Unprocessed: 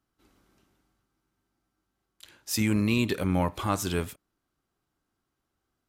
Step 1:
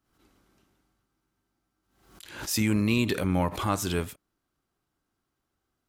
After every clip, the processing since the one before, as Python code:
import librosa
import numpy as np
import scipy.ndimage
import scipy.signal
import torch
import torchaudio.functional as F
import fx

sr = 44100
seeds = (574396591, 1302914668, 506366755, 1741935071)

y = fx.pre_swell(x, sr, db_per_s=80.0)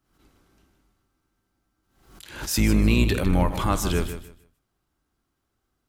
y = fx.octave_divider(x, sr, octaves=2, level_db=1.0)
y = fx.echo_feedback(y, sr, ms=154, feedback_pct=22, wet_db=-11)
y = y * librosa.db_to_amplitude(2.5)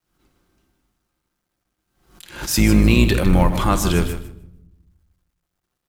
y = fx.law_mismatch(x, sr, coded='A')
y = fx.room_shoebox(y, sr, seeds[0], volume_m3=3200.0, walls='furnished', distance_m=0.89)
y = y * librosa.db_to_amplitude(5.5)